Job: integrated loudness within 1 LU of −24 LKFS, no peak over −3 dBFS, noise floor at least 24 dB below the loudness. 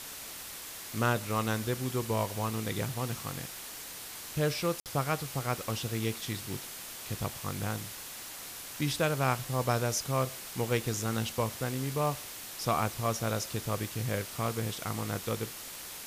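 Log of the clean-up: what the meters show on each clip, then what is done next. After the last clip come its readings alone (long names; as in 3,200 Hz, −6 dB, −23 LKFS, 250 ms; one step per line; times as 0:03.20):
number of dropouts 1; longest dropout 58 ms; background noise floor −44 dBFS; target noise floor −58 dBFS; integrated loudness −33.5 LKFS; sample peak −14.0 dBFS; target loudness −24.0 LKFS
→ repair the gap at 0:04.80, 58 ms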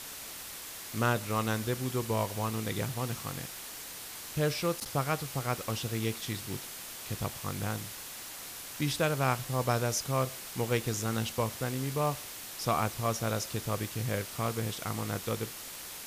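number of dropouts 0; background noise floor −44 dBFS; target noise floor −58 dBFS
→ broadband denoise 14 dB, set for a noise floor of −44 dBFS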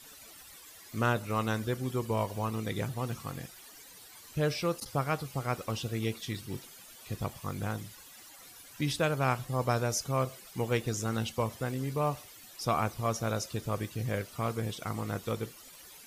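background noise floor −52 dBFS; target noise floor −58 dBFS
→ broadband denoise 6 dB, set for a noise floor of −52 dBFS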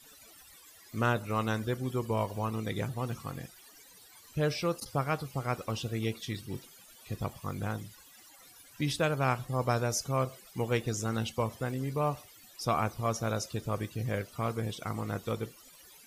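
background noise floor −56 dBFS; target noise floor −58 dBFS
→ broadband denoise 6 dB, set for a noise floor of −56 dBFS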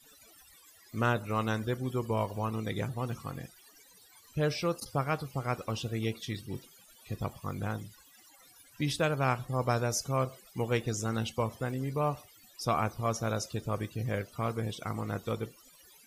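background noise floor −59 dBFS; integrated loudness −33.5 LKFS; sample peak −14.0 dBFS; target loudness −24.0 LKFS
→ level +9.5 dB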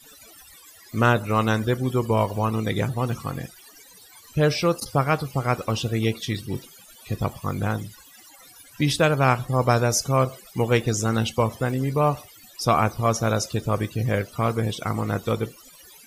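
integrated loudness −24.0 LKFS; sample peak −4.5 dBFS; background noise floor −50 dBFS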